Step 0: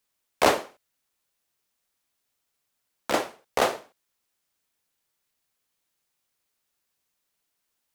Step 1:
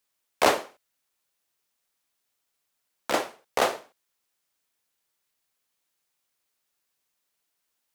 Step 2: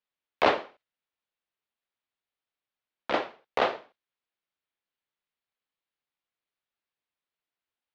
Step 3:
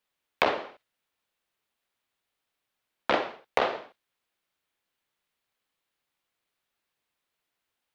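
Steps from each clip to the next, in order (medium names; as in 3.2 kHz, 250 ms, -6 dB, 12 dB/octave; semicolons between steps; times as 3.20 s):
bass shelf 240 Hz -5.5 dB
low-pass 3.9 kHz 24 dB/octave; gate -55 dBFS, range -7 dB; trim -1.5 dB
compression 16:1, threshold -29 dBFS, peak gain reduction 13.5 dB; trim +8.5 dB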